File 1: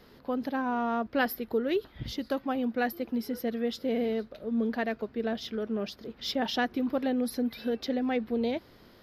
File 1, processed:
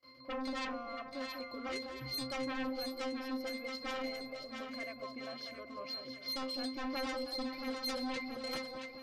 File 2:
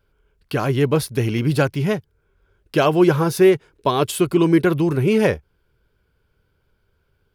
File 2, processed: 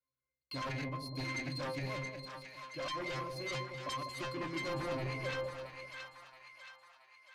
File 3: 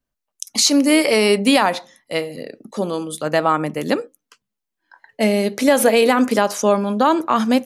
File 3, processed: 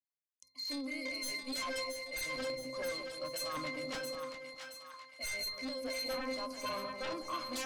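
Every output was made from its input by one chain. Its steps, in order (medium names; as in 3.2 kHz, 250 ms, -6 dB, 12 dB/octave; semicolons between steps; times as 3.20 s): gate with hold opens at -45 dBFS; differentiator; reverse; compression 12:1, threshold -44 dBFS; reverse; pitch-class resonator C, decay 0.38 s; in parallel at -3 dB: sine folder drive 19 dB, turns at -48.5 dBFS; on the sum: two-band feedback delay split 800 Hz, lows 198 ms, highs 674 ms, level -6 dB; trim +14.5 dB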